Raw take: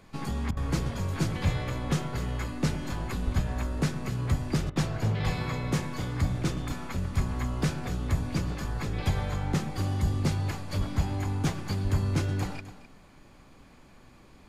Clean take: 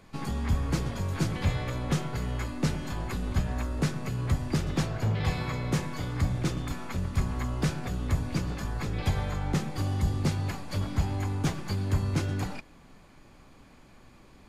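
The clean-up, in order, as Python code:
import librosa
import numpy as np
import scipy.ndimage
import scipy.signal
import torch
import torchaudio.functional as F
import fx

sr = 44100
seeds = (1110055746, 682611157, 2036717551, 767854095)

y = fx.fix_deplosive(x, sr, at_s=(3.24, 5.24, 10.78, 11.83))
y = fx.fix_interpolate(y, sr, at_s=(0.51, 4.7), length_ms=57.0)
y = fx.fix_echo_inverse(y, sr, delay_ms=258, level_db=-14.0)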